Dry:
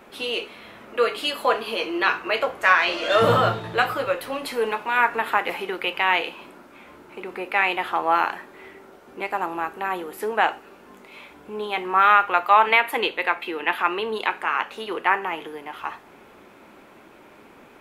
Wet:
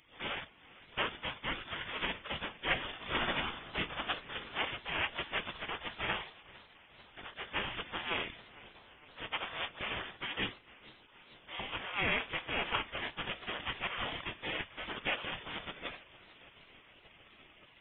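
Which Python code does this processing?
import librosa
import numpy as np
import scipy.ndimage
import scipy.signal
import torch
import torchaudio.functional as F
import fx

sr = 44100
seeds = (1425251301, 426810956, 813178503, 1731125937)

p1 = fx.spec_gate(x, sr, threshold_db=-15, keep='weak')
p2 = fx.dynamic_eq(p1, sr, hz=470.0, q=0.9, threshold_db=-44.0, ratio=4.0, max_db=-3)
p3 = fx.spec_gate(p2, sr, threshold_db=-10, keep='weak')
p4 = fx.rider(p3, sr, range_db=10, speed_s=0.5)
p5 = p3 + (p4 * 10.0 ** (1.0 / 20.0))
p6 = fx.freq_invert(p5, sr, carrier_hz=3500)
y = fx.echo_warbled(p6, sr, ms=451, feedback_pct=68, rate_hz=2.8, cents=209, wet_db=-21.5)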